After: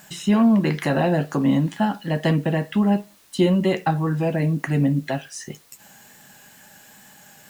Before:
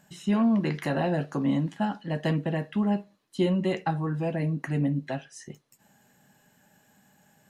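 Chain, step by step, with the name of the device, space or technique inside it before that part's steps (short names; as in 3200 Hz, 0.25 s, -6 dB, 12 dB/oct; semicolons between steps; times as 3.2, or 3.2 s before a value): noise-reduction cassette on a plain deck (mismatched tape noise reduction encoder only; wow and flutter 26 cents; white noise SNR 34 dB); gain +6.5 dB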